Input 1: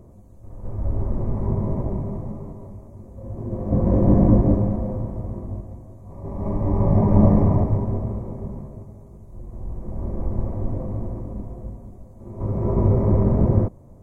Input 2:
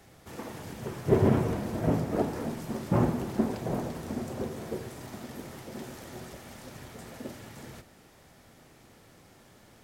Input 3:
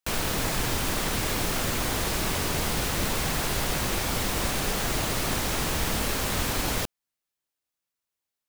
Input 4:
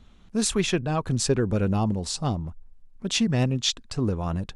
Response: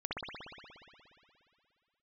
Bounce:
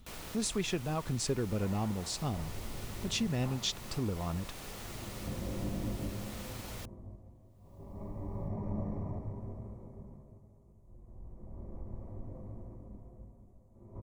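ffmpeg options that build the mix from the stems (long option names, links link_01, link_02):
-filter_complex "[0:a]adynamicequalizer=threshold=0.00891:dfrequency=1600:dqfactor=0.7:tfrequency=1600:tqfactor=0.7:attack=5:release=100:ratio=0.375:range=2.5:mode=boostabove:tftype=highshelf,adelay=1550,volume=-17.5dB[link_01];[1:a]highpass=frequency=730:width=0.5412,highpass=frequency=730:width=1.3066,adelay=500,volume=-8.5dB[link_02];[2:a]acompressor=mode=upward:threshold=-39dB:ratio=2.5,volume=-17dB[link_03];[3:a]volume=-4dB,asplit=2[link_04][link_05];[link_05]apad=whole_len=455826[link_06];[link_02][link_06]sidechaingate=range=-33dB:threshold=-41dB:ratio=16:detection=peak[link_07];[link_01][link_07][link_03][link_04]amix=inputs=4:normalize=0,bandreject=frequency=1600:width=16,acompressor=threshold=-39dB:ratio=1.5"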